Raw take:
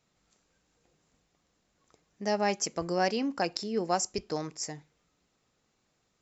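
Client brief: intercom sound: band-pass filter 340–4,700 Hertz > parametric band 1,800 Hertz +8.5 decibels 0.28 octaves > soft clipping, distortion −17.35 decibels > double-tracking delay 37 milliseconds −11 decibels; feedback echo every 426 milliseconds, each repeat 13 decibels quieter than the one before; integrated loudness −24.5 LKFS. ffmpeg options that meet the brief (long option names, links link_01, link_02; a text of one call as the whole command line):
ffmpeg -i in.wav -filter_complex "[0:a]highpass=340,lowpass=4700,equalizer=frequency=1800:width_type=o:width=0.28:gain=8.5,aecho=1:1:426|852|1278:0.224|0.0493|0.0108,asoftclip=threshold=-19.5dB,asplit=2[link_01][link_02];[link_02]adelay=37,volume=-11dB[link_03];[link_01][link_03]amix=inputs=2:normalize=0,volume=9dB" out.wav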